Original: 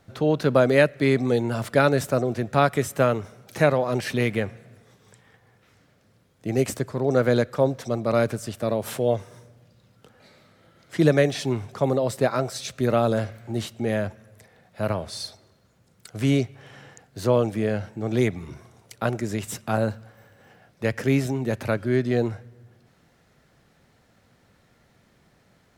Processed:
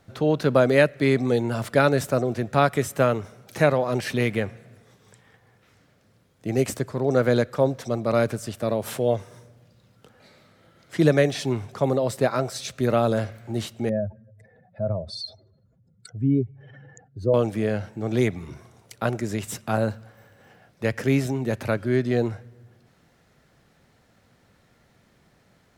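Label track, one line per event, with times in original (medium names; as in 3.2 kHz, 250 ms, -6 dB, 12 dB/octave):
13.890000	17.340000	spectral contrast enhancement exponent 2.2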